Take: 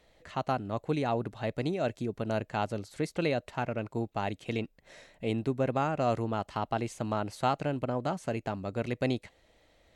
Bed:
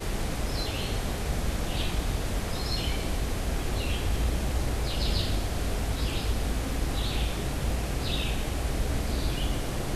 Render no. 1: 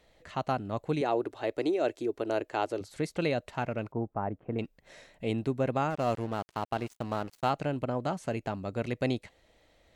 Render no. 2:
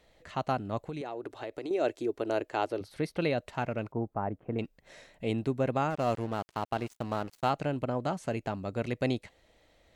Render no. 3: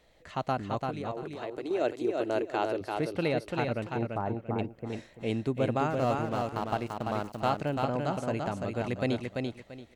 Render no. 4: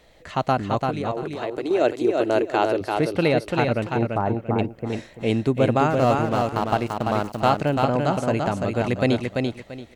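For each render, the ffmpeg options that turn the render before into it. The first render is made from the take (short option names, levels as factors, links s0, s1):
-filter_complex "[0:a]asettb=1/sr,asplit=3[s0][s1][s2];[s0]atrim=end=1.014[s3];[s1]atrim=start=1.01:end=2.81,asetpts=PTS-STARTPTS,afade=t=in:d=0.004:c=qsin,afade=t=out:st=1.796:d=0.004:c=qsin,lowshelf=f=250:t=q:w=3:g=-9.5[s4];[s2]atrim=start=2.806[s5];[s3][s4]acrossfade=d=0.004:c1=hsin:c2=qsin[s6];[s6][s5]acrossfade=d=0.004:c1=qsin:c2=hsin,asettb=1/sr,asplit=3[s7][s8][s9];[s7]atrim=end=3.924[s10];[s8]atrim=start=3.92:end=4.59,asetpts=PTS-STARTPTS,afade=t=in:d=0.004:c=qsin,afade=t=out:st=0.666:d=0.004:c=qsin,lowpass=f=1400:w=0.5412,lowpass=f=1400:w=1.3066[s11];[s9]atrim=start=4.586[s12];[s10][s11]acrossfade=d=0.004:c1=hsin:c2=qsin[s13];[s13][s12]acrossfade=d=0.004:c1=qsin:c2=hsin,asettb=1/sr,asplit=3[s14][s15][s16];[s14]atrim=end=5.904[s17];[s15]atrim=start=5.9:end=7.5,asetpts=PTS-STARTPTS,afade=t=in:d=0.004:c=qsin,afade=t=out:st=1.596:d=0.004:c=qsin,aeval=exprs='sgn(val(0))*max(abs(val(0))-0.0075,0)':c=same[s18];[s16]atrim=start=7.496[s19];[s17][s18]acrossfade=d=0.004:c1=hsin:c2=qsin[s20];[s20][s19]acrossfade=d=0.004:c1=qsin:c2=hsin"
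-filter_complex "[0:a]asettb=1/sr,asplit=3[s0][s1][s2];[s0]atrim=end=0.854[s3];[s1]atrim=start=0.85:end=1.71,asetpts=PTS-STARTPTS,afade=t=in:d=0.004:c=qsin,afade=t=out:st=0.856:d=0.004:c=qsin,acompressor=threshold=0.0224:ratio=12:attack=3.2:release=140:knee=1:detection=peak[s4];[s2]atrim=start=1.706[s5];[s3][s4]acrossfade=d=0.004:c1=hsin:c2=qsin[s6];[s6][s5]acrossfade=d=0.004:c1=qsin:c2=hsin,asettb=1/sr,asplit=3[s7][s8][s9];[s7]atrim=end=2.684[s10];[s8]atrim=start=2.68:end=3.38,asetpts=PTS-STARTPTS,afade=t=in:d=0.004:c=qsin,afade=t=out:st=0.696:d=0.004:c=qsin,equalizer=f=7300:t=o:w=0.38:g=-14[s11];[s9]atrim=start=3.376[s12];[s10][s11]acrossfade=d=0.004:c1=hsin:c2=qsin[s13];[s13][s12]acrossfade=d=0.004:c1=qsin:c2=hsin"
-af "aecho=1:1:340|680|1020:0.631|0.151|0.0363"
-af "volume=2.82"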